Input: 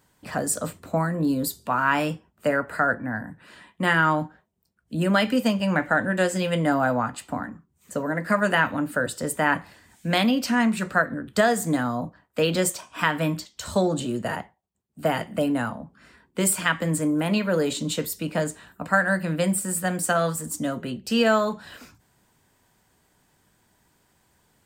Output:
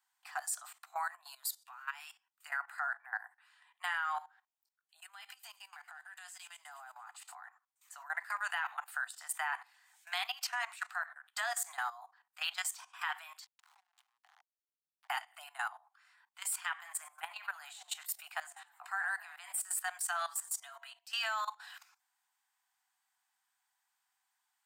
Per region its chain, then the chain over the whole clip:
0:01.62–0:02.50: guitar amp tone stack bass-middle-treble 10-0-10 + downward compressor 1.5 to 1, threshold −34 dBFS
0:05.00–0:07.35: downward compressor, threshold −35 dBFS + high-shelf EQ 5,200 Hz +7.5 dB + delay with a high-pass on its return 115 ms, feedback 59%, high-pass 3,800 Hz, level −10 dB
0:13.46–0:15.10: meter weighting curve A + downward compressor 20 to 1, threshold −39 dBFS + slack as between gear wheels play −32.5 dBFS
0:16.69–0:19.60: dynamic equaliser 4,900 Hz, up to −6 dB, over −43 dBFS, Q 0.95 + echo with shifted repeats 93 ms, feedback 52%, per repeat +81 Hz, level −19.5 dB
0:20.26–0:21.05: comb filter 4.4 ms, depth 57% + hum removal 138.1 Hz, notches 8
whole clip: Butterworth high-pass 740 Hz 96 dB per octave; notch filter 940 Hz, Q 21; output level in coarse steps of 16 dB; level −3 dB

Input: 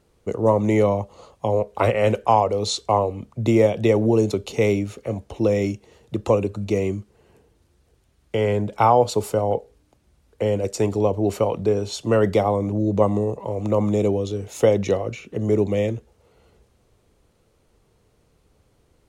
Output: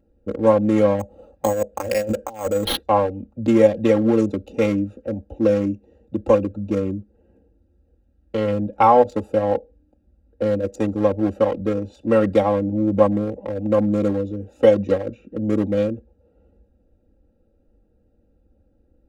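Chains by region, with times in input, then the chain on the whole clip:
0:00.99–0:02.83: low-shelf EQ 330 Hz −2.5 dB + compressor whose output falls as the input rises −22 dBFS, ratio −0.5 + bad sample-rate conversion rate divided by 6×, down none, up hold
whole clip: adaptive Wiener filter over 41 samples; comb filter 3.7 ms, depth 90%

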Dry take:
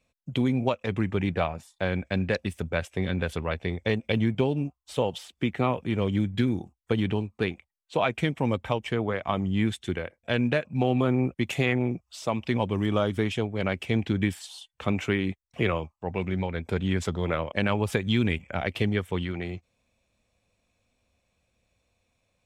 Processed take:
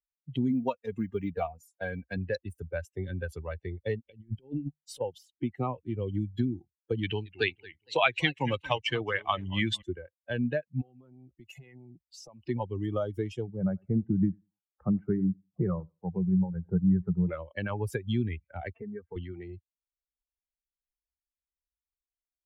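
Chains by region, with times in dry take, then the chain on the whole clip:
0:00.50–0:02.17: high-shelf EQ 7,300 Hz +6 dB + comb filter 4.3 ms, depth 44% + floating-point word with a short mantissa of 6 bits
0:04.05–0:05.01: mains-hum notches 50/100/150/200 Hz + compressor whose output falls as the input rises −31 dBFS, ratio −0.5
0:07.03–0:09.82: parametric band 3,700 Hz +15 dB 2.9 octaves + feedback echo with a swinging delay time 231 ms, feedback 45%, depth 217 cents, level −12 dB
0:10.81–0:12.48: downward compressor 8 to 1, threshold −34 dBFS + saturating transformer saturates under 300 Hz
0:13.47–0:17.29: low-pass filter 1,500 Hz 24 dB per octave + parametric band 180 Hz +12 dB 0.39 octaves + repeating echo 93 ms, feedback 35%, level −17 dB
0:18.74–0:19.16: low-pass filter 1,900 Hz 24 dB per octave + comb filter 4.4 ms, depth 72% + downward compressor 2.5 to 1, threshold −31 dBFS
whole clip: spectral dynamics exaggerated over time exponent 2; high-shelf EQ 5,000 Hz −4.5 dB; multiband upward and downward compressor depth 40%

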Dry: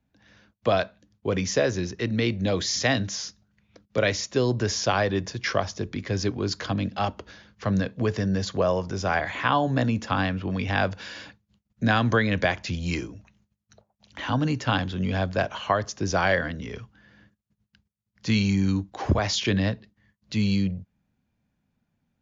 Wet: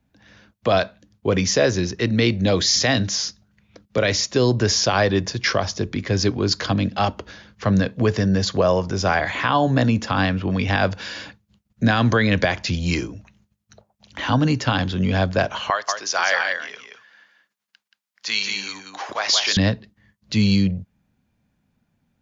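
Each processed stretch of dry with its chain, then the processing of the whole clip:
0:15.70–0:19.57: high-pass filter 960 Hz + single-tap delay 178 ms −5 dB
whole clip: dynamic equaliser 4,700 Hz, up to +4 dB, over −44 dBFS, Q 1.9; boost into a limiter +12 dB; level −6 dB

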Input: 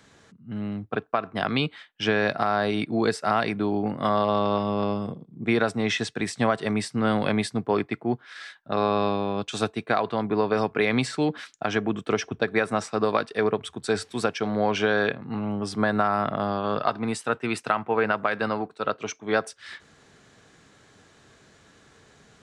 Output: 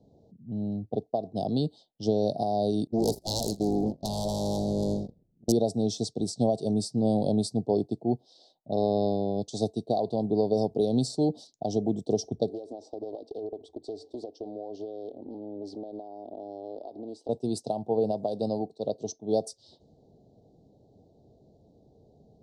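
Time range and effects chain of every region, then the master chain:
0:02.87–0:05.52: phase distortion by the signal itself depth 0.66 ms + echo with shifted repeats 81 ms, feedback 52%, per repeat −56 Hz, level −11 dB + noise gate −29 dBFS, range −26 dB
0:12.49–0:17.29: downward compressor 12 to 1, threshold −33 dBFS + low shelf with overshoot 230 Hz −10 dB, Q 3 + highs frequency-modulated by the lows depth 0.25 ms
whole clip: low-pass that shuts in the quiet parts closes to 1,500 Hz, open at −23 dBFS; elliptic band-stop filter 710–4,400 Hz, stop band 50 dB; parametric band 1,100 Hz −6.5 dB 0.39 octaves

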